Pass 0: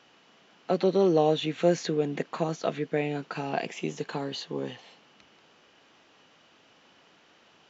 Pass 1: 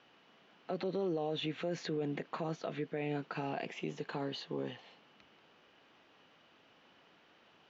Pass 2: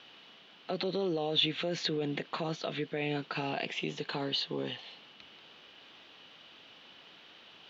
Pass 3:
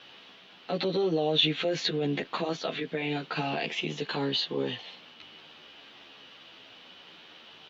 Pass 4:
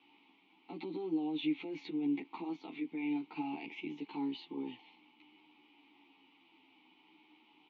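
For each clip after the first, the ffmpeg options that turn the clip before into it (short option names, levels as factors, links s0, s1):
-af "lowpass=4000,alimiter=limit=0.0708:level=0:latency=1:release=42,volume=0.596"
-af "equalizer=f=3600:t=o:w=1.1:g=12,areverse,acompressor=mode=upward:threshold=0.00251:ratio=2.5,areverse,volume=1.33"
-filter_complex "[0:a]asplit=2[s0][s1];[s1]adelay=11.6,afreqshift=-0.49[s2];[s0][s2]amix=inputs=2:normalize=1,volume=2.24"
-filter_complex "[0:a]asplit=3[s0][s1][s2];[s0]bandpass=f=300:t=q:w=8,volume=1[s3];[s1]bandpass=f=870:t=q:w=8,volume=0.501[s4];[s2]bandpass=f=2240:t=q:w=8,volume=0.355[s5];[s3][s4][s5]amix=inputs=3:normalize=0,volume=1.12"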